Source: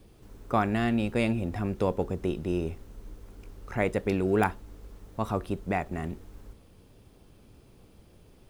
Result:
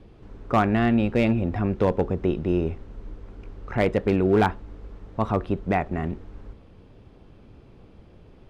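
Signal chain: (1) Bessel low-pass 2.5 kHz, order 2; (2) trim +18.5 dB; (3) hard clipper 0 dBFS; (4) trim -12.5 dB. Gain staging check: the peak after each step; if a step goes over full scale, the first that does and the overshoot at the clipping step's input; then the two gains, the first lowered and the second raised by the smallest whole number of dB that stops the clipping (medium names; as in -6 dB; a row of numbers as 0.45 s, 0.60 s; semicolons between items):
-11.0 dBFS, +7.5 dBFS, 0.0 dBFS, -12.5 dBFS; step 2, 7.5 dB; step 2 +10.5 dB, step 4 -4.5 dB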